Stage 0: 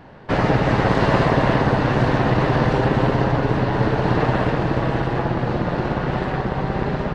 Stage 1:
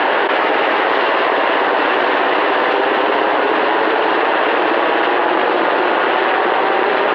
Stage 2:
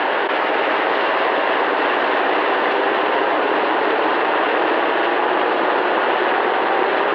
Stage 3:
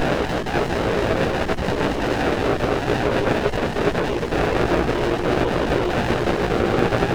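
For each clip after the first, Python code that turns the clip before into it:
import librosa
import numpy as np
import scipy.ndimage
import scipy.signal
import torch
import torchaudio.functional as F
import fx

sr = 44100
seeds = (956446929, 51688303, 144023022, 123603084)

y1 = scipy.signal.sosfilt(scipy.signal.cheby1(3, 1.0, [340.0, 3200.0], 'bandpass', fs=sr, output='sos'), x)
y1 = fx.tilt_eq(y1, sr, slope=2.5)
y1 = fx.env_flatten(y1, sr, amount_pct=100)
y1 = y1 * 10.0 ** (3.5 / 20.0)
y2 = fx.echo_filtered(y1, sr, ms=344, feedback_pct=81, hz=4200.0, wet_db=-9.0)
y2 = y2 * 10.0 ** (-4.0 / 20.0)
y3 = fx.spec_dropout(y2, sr, seeds[0], share_pct=31)
y3 = fx.doubler(y3, sr, ms=17.0, db=-2.5)
y3 = fx.running_max(y3, sr, window=33)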